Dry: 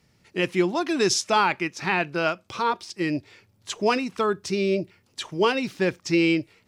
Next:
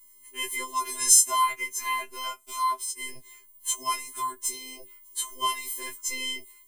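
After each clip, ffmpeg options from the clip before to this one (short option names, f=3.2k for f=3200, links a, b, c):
-af "aexciter=amount=9.9:drive=8.6:freq=7.5k,afftfilt=real='hypot(re,im)*cos(PI*b)':imag='0':win_size=512:overlap=0.75,afftfilt=real='re*2.45*eq(mod(b,6),0)':imag='im*2.45*eq(mod(b,6),0)':win_size=2048:overlap=0.75,volume=1dB"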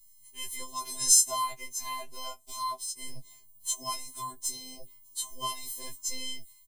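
-filter_complex "[0:a]firequalizer=gain_entry='entry(200,0);entry(330,-28);entry(480,-12);entry(770,-7);entry(1200,-17);entry(2500,-12);entry(4000,1);entry(9400,-5)':delay=0.05:min_phase=1,acrossover=split=200|850|1900[a][b][c][d];[b]dynaudnorm=f=120:g=11:m=11dB[e];[a][e][c][d]amix=inputs=4:normalize=0,lowshelf=f=240:g=7"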